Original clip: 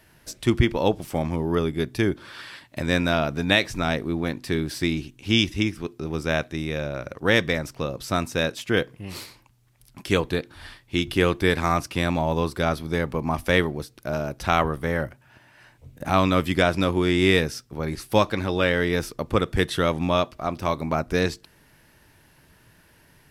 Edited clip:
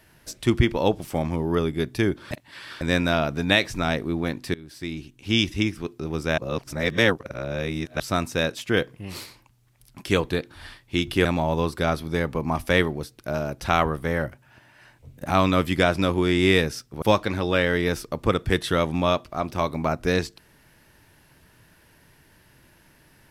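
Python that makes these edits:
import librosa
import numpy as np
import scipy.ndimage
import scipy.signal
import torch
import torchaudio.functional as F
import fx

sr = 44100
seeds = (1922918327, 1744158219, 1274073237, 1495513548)

y = fx.edit(x, sr, fx.reverse_span(start_s=2.31, length_s=0.5),
    fx.fade_in_from(start_s=4.54, length_s=0.98, floor_db=-22.0),
    fx.reverse_span(start_s=6.38, length_s=1.62),
    fx.cut(start_s=11.25, length_s=0.79),
    fx.cut(start_s=17.81, length_s=0.28), tone=tone)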